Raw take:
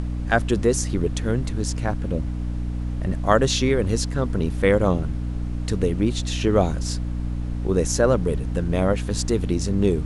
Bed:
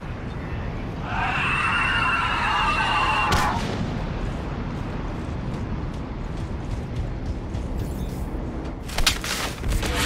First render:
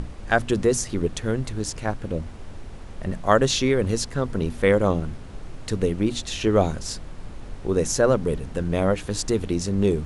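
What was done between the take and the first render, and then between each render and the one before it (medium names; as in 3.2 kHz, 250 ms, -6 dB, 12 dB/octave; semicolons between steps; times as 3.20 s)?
hum notches 60/120/180/240/300 Hz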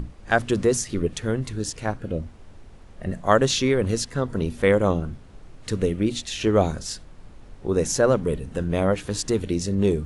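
noise print and reduce 8 dB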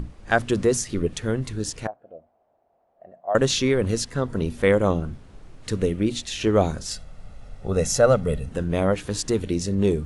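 1.87–3.35 s: band-pass filter 680 Hz, Q 7.2; 6.91–8.49 s: comb 1.5 ms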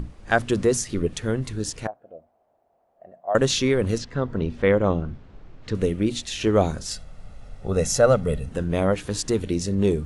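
3.98–5.75 s: distance through air 150 m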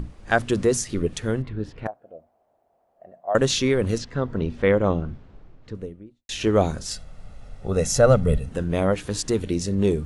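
1.42–1.86 s: distance through air 410 m; 5.01–6.29 s: studio fade out; 7.96–8.38 s: bass shelf 150 Hz +9 dB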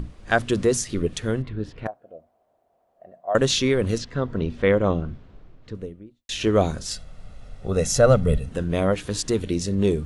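peaking EQ 3.5 kHz +2.5 dB; band-stop 840 Hz, Q 16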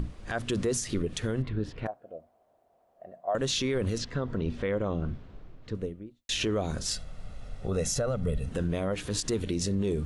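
compression, threshold -21 dBFS, peak gain reduction 10.5 dB; peak limiter -20 dBFS, peak gain reduction 11.5 dB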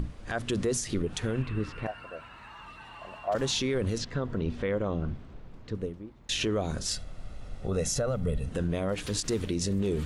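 add bed -25.5 dB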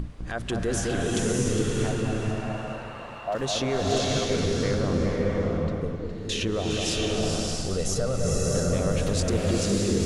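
echo whose repeats swap between lows and highs 206 ms, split 1.4 kHz, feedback 55%, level -3.5 dB; swelling reverb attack 650 ms, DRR -2 dB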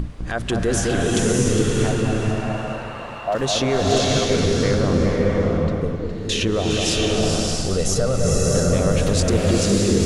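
trim +6.5 dB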